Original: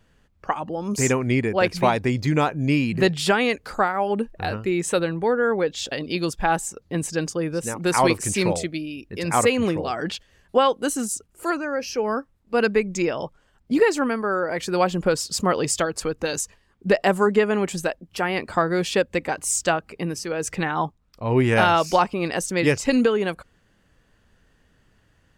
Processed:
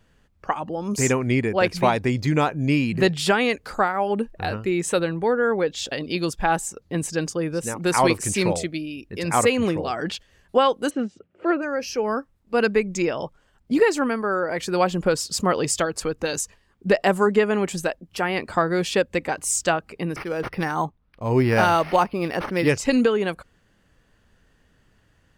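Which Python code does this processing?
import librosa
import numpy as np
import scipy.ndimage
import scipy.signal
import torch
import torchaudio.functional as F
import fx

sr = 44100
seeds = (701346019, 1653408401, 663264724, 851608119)

y = fx.cabinet(x, sr, low_hz=100.0, low_slope=24, high_hz=3000.0, hz=(180.0, 350.0, 560.0, 990.0), db=(4, 5, 9, -5), at=(10.89, 11.61), fade=0.02)
y = fx.resample_linear(y, sr, factor=6, at=(20.16, 22.69))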